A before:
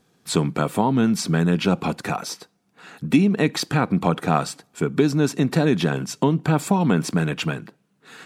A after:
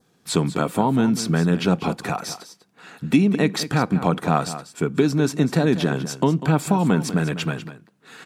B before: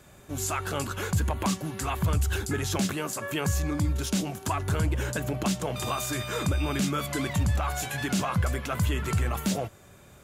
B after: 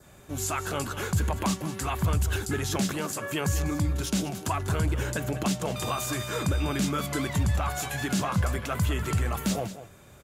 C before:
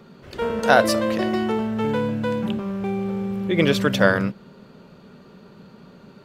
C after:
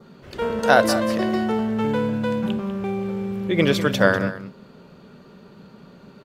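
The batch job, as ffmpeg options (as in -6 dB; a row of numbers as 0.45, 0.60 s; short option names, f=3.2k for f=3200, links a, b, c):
-af "adynamicequalizer=threshold=0.00794:dfrequency=2600:dqfactor=2.3:tfrequency=2600:tqfactor=2.3:attack=5:release=100:ratio=0.375:range=1.5:mode=cutabove:tftype=bell,aecho=1:1:196:0.224"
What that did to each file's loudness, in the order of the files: 0.0, 0.0, 0.0 LU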